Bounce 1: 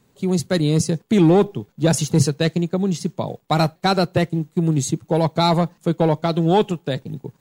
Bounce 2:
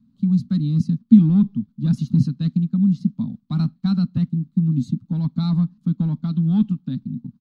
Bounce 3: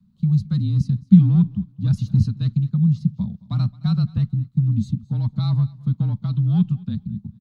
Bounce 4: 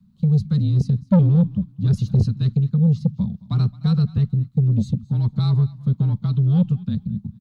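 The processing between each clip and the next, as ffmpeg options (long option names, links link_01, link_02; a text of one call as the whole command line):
ffmpeg -i in.wav -af "firequalizer=gain_entry='entry(140,0);entry(240,14);entry(360,-28);entry(570,-29);entry(1200,-12);entry(1900,-23);entry(4100,-11);entry(7200,-27)':delay=0.05:min_phase=1,volume=-2.5dB" out.wav
ffmpeg -i in.wav -af "aecho=1:1:218|436:0.0794|0.0175,afreqshift=-34" out.wav
ffmpeg -i in.wav -af "asoftclip=type=tanh:threshold=-13dB,volume=3dB" out.wav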